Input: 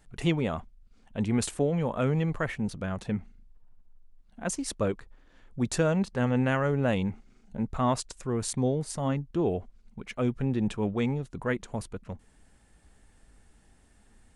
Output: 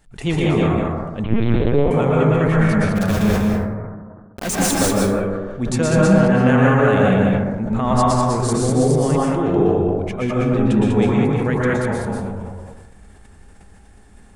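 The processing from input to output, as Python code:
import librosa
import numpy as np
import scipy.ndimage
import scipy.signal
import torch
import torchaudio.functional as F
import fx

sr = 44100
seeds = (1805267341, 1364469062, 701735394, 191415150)

y = fx.quant_companded(x, sr, bits=2, at=(2.95, 4.76), fade=0.02)
y = y + 10.0 ** (-3.5 / 20.0) * np.pad(y, (int(197 * sr / 1000.0), 0))[:len(y)]
y = fx.rev_plate(y, sr, seeds[0], rt60_s=1.3, hf_ratio=0.3, predelay_ms=105, drr_db=-5.0)
y = fx.lpc_vocoder(y, sr, seeds[1], excitation='pitch_kept', order=10, at=(1.24, 1.91))
y = fx.sustainer(y, sr, db_per_s=36.0)
y = y * librosa.db_to_amplitude(3.5)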